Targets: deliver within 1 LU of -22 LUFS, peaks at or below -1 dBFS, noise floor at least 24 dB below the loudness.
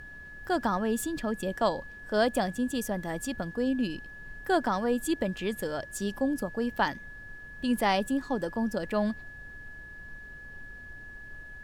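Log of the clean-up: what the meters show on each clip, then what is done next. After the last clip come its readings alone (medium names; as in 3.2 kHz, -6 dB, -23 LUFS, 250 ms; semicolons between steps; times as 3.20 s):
steady tone 1.7 kHz; tone level -44 dBFS; noise floor -46 dBFS; noise floor target -54 dBFS; loudness -30.0 LUFS; peak level -12.5 dBFS; loudness target -22.0 LUFS
-> band-stop 1.7 kHz, Q 30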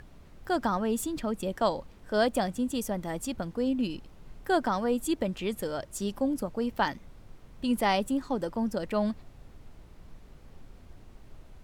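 steady tone not found; noise floor -52 dBFS; noise floor target -55 dBFS
-> noise print and reduce 6 dB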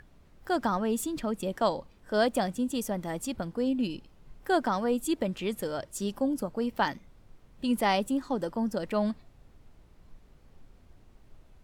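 noise floor -58 dBFS; loudness -30.5 LUFS; peak level -13.0 dBFS; loudness target -22.0 LUFS
-> trim +8.5 dB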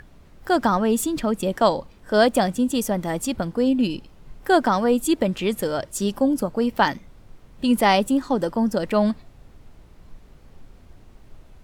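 loudness -22.0 LUFS; peak level -4.5 dBFS; noise floor -50 dBFS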